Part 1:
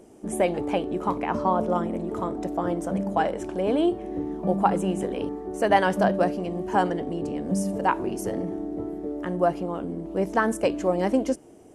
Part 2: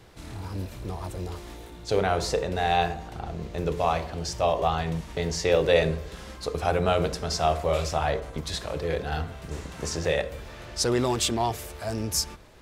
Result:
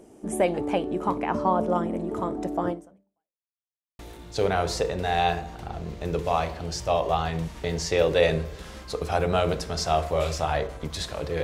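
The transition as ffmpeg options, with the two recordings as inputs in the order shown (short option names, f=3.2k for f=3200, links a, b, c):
-filter_complex "[0:a]apad=whole_dur=11.43,atrim=end=11.43,asplit=2[a][b];[a]atrim=end=3.51,asetpts=PTS-STARTPTS,afade=t=out:st=2.69:d=0.82:c=exp[c];[b]atrim=start=3.51:end=3.99,asetpts=PTS-STARTPTS,volume=0[d];[1:a]atrim=start=1.52:end=8.96,asetpts=PTS-STARTPTS,afade=t=in:d=0.004:c=hsin[e];[c][d][e]concat=n=3:v=0:a=1"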